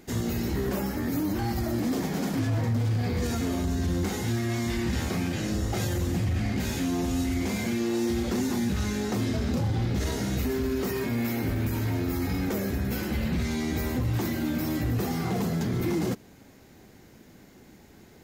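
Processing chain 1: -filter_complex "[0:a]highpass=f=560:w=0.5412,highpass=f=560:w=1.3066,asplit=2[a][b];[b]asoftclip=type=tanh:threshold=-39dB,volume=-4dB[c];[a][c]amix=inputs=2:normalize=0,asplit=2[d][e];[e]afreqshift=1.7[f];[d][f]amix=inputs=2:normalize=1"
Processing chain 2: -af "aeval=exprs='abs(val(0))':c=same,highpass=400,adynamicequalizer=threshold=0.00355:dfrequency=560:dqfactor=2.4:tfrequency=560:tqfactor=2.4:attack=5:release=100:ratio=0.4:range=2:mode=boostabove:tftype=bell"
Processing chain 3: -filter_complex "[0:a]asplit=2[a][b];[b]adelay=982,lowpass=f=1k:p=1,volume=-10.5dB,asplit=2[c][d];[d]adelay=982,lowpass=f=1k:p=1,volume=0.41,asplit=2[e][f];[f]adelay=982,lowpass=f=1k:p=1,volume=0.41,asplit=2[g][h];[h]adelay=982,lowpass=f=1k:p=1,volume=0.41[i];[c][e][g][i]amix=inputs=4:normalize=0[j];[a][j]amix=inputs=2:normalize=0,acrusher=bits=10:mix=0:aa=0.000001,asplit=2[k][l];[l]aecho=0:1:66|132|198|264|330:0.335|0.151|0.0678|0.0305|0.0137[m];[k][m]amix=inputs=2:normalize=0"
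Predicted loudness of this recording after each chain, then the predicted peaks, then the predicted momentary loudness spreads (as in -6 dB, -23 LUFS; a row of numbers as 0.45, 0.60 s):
-37.0, -34.5, -28.0 LUFS; -23.5, -21.5, -15.0 dBFS; 7, 3, 5 LU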